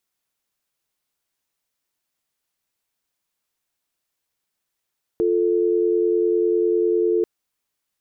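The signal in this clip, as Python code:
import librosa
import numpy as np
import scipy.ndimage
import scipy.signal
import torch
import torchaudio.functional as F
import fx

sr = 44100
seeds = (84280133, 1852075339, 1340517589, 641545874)

y = fx.call_progress(sr, length_s=2.04, kind='dial tone', level_db=-19.0)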